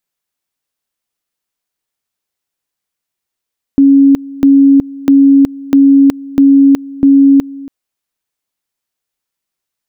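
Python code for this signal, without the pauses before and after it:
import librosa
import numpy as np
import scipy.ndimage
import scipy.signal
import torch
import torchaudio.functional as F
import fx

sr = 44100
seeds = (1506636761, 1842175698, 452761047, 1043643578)

y = fx.two_level_tone(sr, hz=276.0, level_db=-2.5, drop_db=21.0, high_s=0.37, low_s=0.28, rounds=6)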